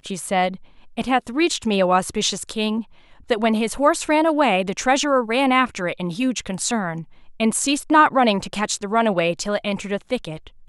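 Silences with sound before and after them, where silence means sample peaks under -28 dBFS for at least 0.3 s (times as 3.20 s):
0.55–0.98 s
2.81–3.30 s
7.01–7.40 s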